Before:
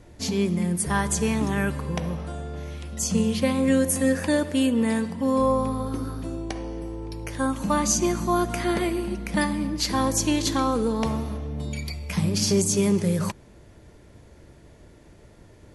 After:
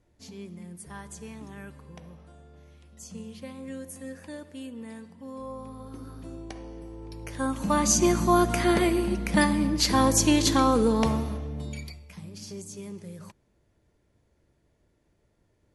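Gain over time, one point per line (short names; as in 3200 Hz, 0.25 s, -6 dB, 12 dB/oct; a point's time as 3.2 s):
5.43 s -18 dB
6.31 s -8.5 dB
6.88 s -8.5 dB
8.11 s +2 dB
10.98 s +2 dB
11.82 s -6 dB
12.16 s -18.5 dB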